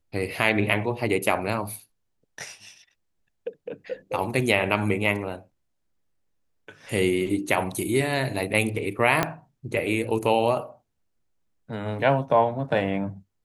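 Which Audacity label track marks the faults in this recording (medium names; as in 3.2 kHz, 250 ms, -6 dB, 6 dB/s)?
9.230000	9.230000	pop -7 dBFS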